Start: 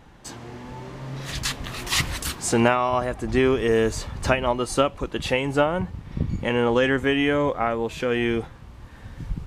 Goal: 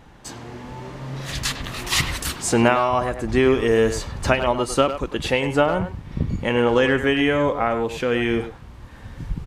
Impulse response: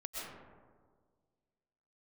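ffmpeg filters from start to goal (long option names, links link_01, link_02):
-filter_complex "[0:a]asplit=2[link_01][link_02];[link_02]adelay=100,highpass=300,lowpass=3400,asoftclip=type=hard:threshold=-12dB,volume=-9dB[link_03];[link_01][link_03]amix=inputs=2:normalize=0,volume=2dB"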